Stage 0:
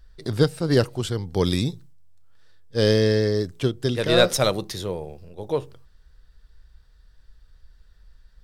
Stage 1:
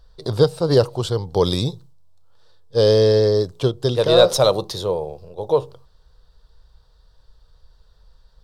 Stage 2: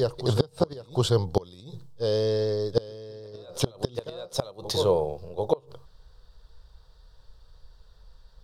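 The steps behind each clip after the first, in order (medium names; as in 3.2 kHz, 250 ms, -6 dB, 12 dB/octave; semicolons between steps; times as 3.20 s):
graphic EQ 125/250/500/1000/2000/4000 Hz +5/-4/+9/+10/-9/+8 dB; in parallel at 0 dB: peak limiter -6.5 dBFS, peak gain reduction 10 dB; on the sum: trim -7 dB
reverse echo 748 ms -10.5 dB; inverted gate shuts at -8 dBFS, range -27 dB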